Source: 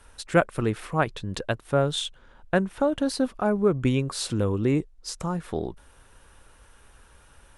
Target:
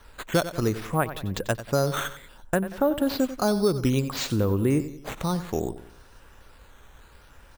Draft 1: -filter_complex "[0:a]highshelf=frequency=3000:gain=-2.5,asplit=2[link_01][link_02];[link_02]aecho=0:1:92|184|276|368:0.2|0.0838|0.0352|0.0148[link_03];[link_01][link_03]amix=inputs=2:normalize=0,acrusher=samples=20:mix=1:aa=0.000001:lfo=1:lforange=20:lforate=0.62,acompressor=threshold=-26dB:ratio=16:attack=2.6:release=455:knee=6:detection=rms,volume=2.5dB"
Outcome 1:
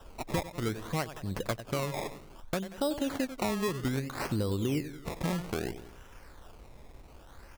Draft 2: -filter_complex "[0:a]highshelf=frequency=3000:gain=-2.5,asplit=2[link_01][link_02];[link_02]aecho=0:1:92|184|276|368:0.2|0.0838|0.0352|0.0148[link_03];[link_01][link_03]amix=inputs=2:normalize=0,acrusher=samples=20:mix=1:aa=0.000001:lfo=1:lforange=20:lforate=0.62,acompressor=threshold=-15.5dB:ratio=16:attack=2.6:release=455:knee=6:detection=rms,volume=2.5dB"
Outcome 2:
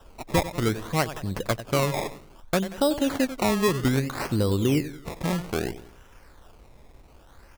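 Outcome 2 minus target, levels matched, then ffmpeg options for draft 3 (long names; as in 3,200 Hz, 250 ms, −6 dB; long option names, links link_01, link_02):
sample-and-hold swept by an LFO: distortion +9 dB
-filter_complex "[0:a]highshelf=frequency=3000:gain=-2.5,asplit=2[link_01][link_02];[link_02]aecho=0:1:92|184|276|368:0.2|0.0838|0.0352|0.0148[link_03];[link_01][link_03]amix=inputs=2:normalize=0,acrusher=samples=6:mix=1:aa=0.000001:lfo=1:lforange=6:lforate=0.62,acompressor=threshold=-15.5dB:ratio=16:attack=2.6:release=455:knee=6:detection=rms,volume=2.5dB"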